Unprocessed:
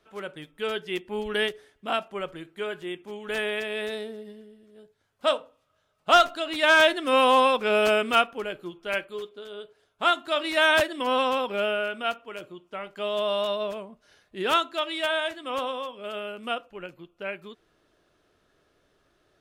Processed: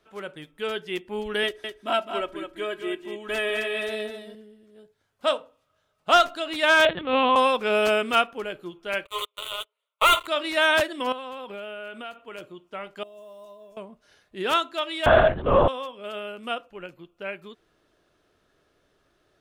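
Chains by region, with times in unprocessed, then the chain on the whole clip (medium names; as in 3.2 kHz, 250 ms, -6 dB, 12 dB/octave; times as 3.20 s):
1.43–4.35 s: comb 3.1 ms, depth 71% + delay 209 ms -7.5 dB
6.85–7.36 s: LPC vocoder at 8 kHz pitch kept + high-pass 58 Hz + tape noise reduction on one side only decoder only
9.05–10.27 s: steep high-pass 560 Hz 48 dB/octave + waveshaping leveller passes 5 + static phaser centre 1.1 kHz, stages 8
11.12–12.38 s: peaking EQ 5.5 kHz -10 dB 0.2 oct + compression 5:1, threshold -34 dBFS
13.03–13.77 s: block-companded coder 7-bit + high-order bell 2.1 kHz -14 dB 2.4 oct + feedback comb 340 Hz, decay 0.4 s, mix 90%
15.06–15.68 s: low-pass 1.9 kHz 6 dB/octave + peaking EQ 570 Hz +14 dB 3 oct + LPC vocoder at 8 kHz whisper
whole clip: none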